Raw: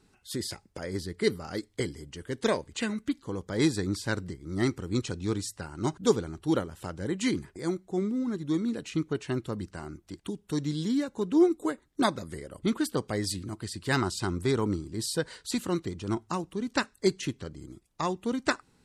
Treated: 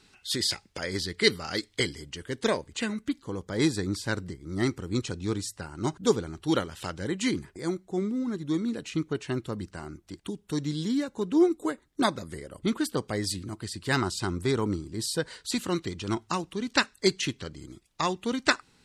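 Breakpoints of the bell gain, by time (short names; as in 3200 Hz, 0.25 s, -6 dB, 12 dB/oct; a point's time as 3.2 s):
bell 3400 Hz 2.6 oct
1.81 s +12.5 dB
2.53 s +1.5 dB
6.19 s +1.5 dB
6.78 s +13 dB
7.26 s +2 dB
15.35 s +2 dB
15.93 s +8.5 dB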